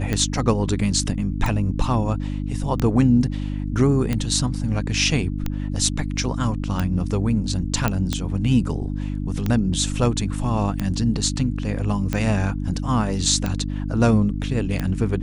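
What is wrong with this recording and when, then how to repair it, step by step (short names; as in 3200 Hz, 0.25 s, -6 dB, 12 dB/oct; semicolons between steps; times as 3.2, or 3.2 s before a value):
hum 50 Hz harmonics 6 -26 dBFS
tick 45 rpm -10 dBFS
7.88 pop -7 dBFS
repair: de-click; de-hum 50 Hz, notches 6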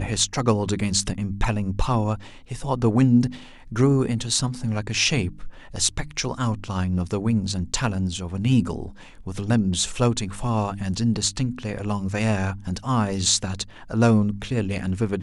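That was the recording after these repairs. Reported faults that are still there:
none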